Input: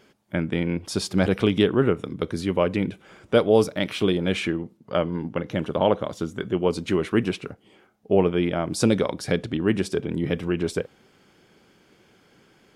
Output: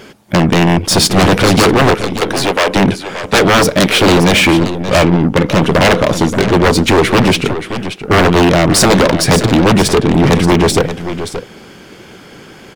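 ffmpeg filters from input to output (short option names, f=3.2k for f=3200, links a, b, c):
-filter_complex "[0:a]aeval=exprs='0.596*sin(PI/2*6.31*val(0)/0.596)':c=same,asettb=1/sr,asplit=3[a][b][c];[a]atrim=end=1.944[d];[b]atrim=start=1.94:end=2.76,asetpts=PTS-STARTPTS,afade=t=in:d=0.004:c=qsin,afade=t=out:st=0.816:d=0.004:c=qsin,highpass=460[e];[c]atrim=start=2.756[f];[d][e]acrossfade=d=0.004:c1=hsin:c2=qsin[g];[g][f]acrossfade=d=0.004:c1=qsin:c2=hsin,apsyclip=6.5dB,asplit=2[h][i];[i]aecho=0:1:577:0.282[j];[h][j]amix=inputs=2:normalize=0,aeval=exprs='1.33*(cos(1*acos(clip(val(0)/1.33,-1,1)))-cos(1*PI/2))+0.237*(cos(2*acos(clip(val(0)/1.33,-1,1)))-cos(2*PI/2))+0.0944*(cos(8*acos(clip(val(0)/1.33,-1,1)))-cos(8*PI/2))':c=same,volume=-5.5dB"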